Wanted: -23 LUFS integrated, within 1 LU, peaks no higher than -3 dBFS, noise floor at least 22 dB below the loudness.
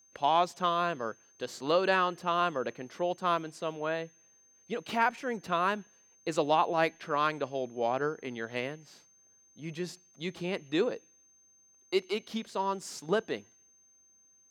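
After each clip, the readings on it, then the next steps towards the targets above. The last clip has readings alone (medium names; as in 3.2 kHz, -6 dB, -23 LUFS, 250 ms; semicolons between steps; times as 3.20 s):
steady tone 6.3 kHz; tone level -61 dBFS; loudness -32.0 LUFS; peak level -13.0 dBFS; loudness target -23.0 LUFS
-> band-stop 6.3 kHz, Q 30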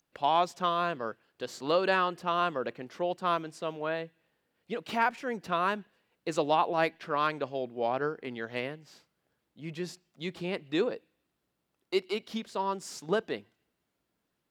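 steady tone not found; loudness -31.5 LUFS; peak level -13.0 dBFS; loudness target -23.0 LUFS
-> trim +8.5 dB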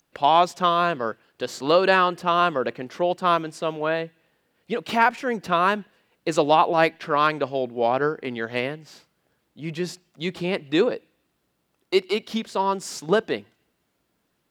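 loudness -23.5 LUFS; peak level -4.5 dBFS; noise floor -73 dBFS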